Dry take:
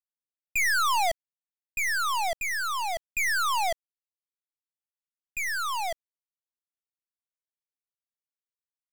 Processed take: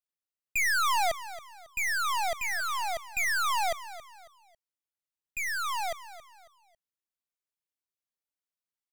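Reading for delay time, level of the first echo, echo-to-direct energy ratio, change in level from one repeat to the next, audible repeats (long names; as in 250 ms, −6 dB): 274 ms, −15.0 dB, −14.5 dB, −9.0 dB, 3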